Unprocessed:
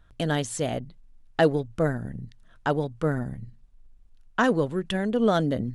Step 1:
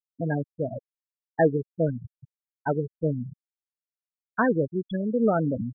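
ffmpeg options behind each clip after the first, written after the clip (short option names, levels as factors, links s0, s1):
-af "afftfilt=real='re*gte(hypot(re,im),0.2)':imag='im*gte(hypot(re,im),0.2)':win_size=1024:overlap=0.75"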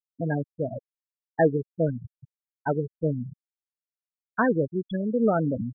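-af anull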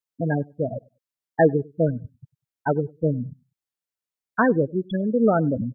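-filter_complex "[0:a]asplit=2[s0][s1];[s1]adelay=98,lowpass=f=880:p=1,volume=0.0631,asplit=2[s2][s3];[s3]adelay=98,lowpass=f=880:p=1,volume=0.23[s4];[s0][s2][s4]amix=inputs=3:normalize=0,volume=1.5"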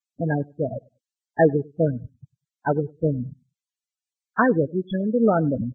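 -ar 22050 -c:a libvorbis -b:a 16k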